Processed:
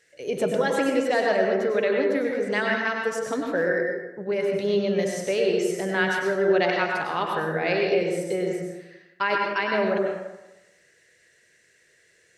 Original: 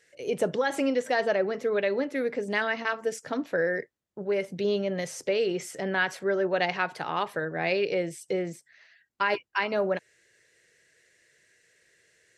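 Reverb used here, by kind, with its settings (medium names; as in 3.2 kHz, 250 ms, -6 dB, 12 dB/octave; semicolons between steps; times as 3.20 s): plate-style reverb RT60 1 s, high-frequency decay 0.55×, pre-delay 85 ms, DRR 0.5 dB; trim +1 dB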